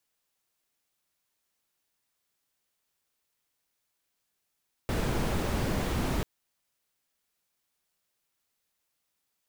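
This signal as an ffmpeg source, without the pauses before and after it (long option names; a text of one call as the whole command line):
ffmpeg -f lavfi -i "anoisesrc=color=brown:amplitude=0.176:duration=1.34:sample_rate=44100:seed=1" out.wav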